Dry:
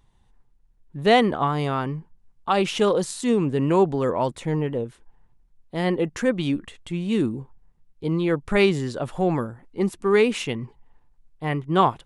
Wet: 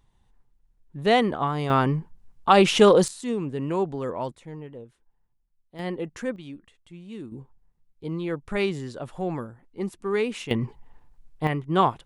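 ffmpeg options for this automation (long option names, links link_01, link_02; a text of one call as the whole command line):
ffmpeg -i in.wav -af "asetnsamples=nb_out_samples=441:pad=0,asendcmd='1.7 volume volume 5dB;3.08 volume volume -7dB;4.35 volume volume -14.5dB;5.79 volume volume -8dB;6.36 volume volume -16dB;7.32 volume volume -7dB;10.51 volume volume 5dB;11.47 volume volume -2dB',volume=-3dB" out.wav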